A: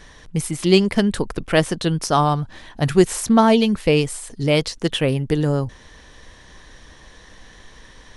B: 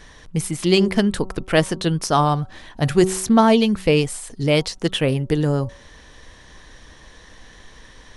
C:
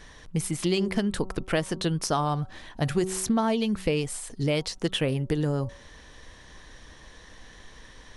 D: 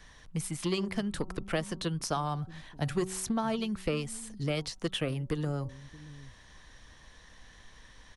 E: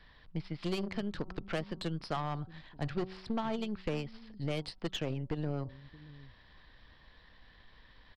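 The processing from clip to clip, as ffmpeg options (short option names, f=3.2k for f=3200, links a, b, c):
-af "bandreject=f=188.1:t=h:w=4,bandreject=f=376.2:t=h:w=4,bandreject=f=564.3:t=h:w=4,bandreject=f=752.4:t=h:w=4,bandreject=f=940.5:t=h:w=4,bandreject=f=1.1286k:t=h:w=4,bandreject=f=1.3167k:t=h:w=4"
-af "acompressor=threshold=-18dB:ratio=6,volume=-3.5dB"
-filter_complex "[0:a]acrossover=split=320|470|2200[a][b][c][d];[a]aecho=1:1:627:0.188[e];[b]acrusher=bits=4:mix=0:aa=0.5[f];[e][f][c][d]amix=inputs=4:normalize=0,volume=-5.5dB"
-af "aresample=11025,aresample=44100,aeval=exprs='0.158*(cos(1*acos(clip(val(0)/0.158,-1,1)))-cos(1*PI/2))+0.0141*(cos(8*acos(clip(val(0)/0.158,-1,1)))-cos(8*PI/2))':c=same,volume=-4.5dB"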